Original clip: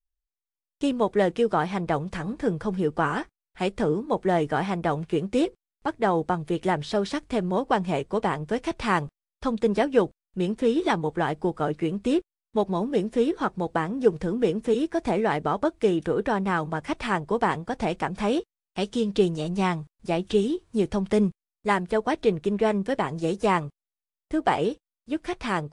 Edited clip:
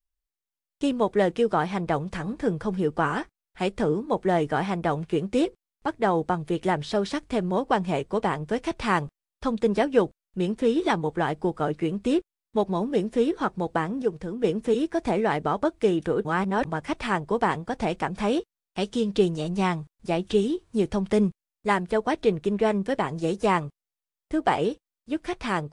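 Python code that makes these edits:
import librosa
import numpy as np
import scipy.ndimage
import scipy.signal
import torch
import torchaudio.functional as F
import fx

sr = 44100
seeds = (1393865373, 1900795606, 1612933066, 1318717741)

y = fx.edit(x, sr, fx.clip_gain(start_s=14.02, length_s=0.42, db=-5.5),
    fx.reverse_span(start_s=16.25, length_s=0.4), tone=tone)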